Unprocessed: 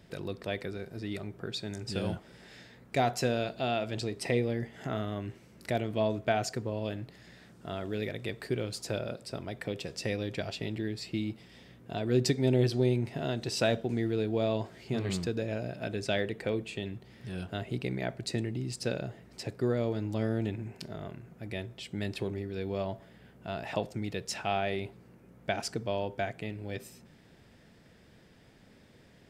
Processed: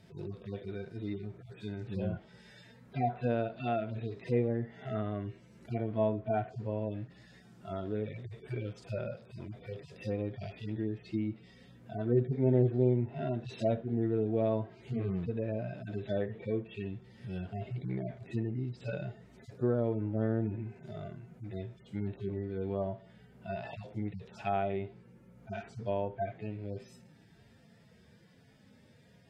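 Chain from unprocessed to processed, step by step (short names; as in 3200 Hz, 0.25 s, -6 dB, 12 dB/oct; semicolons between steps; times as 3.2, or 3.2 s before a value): median-filter separation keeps harmonic; treble ducked by the level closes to 1800 Hz, closed at -29.5 dBFS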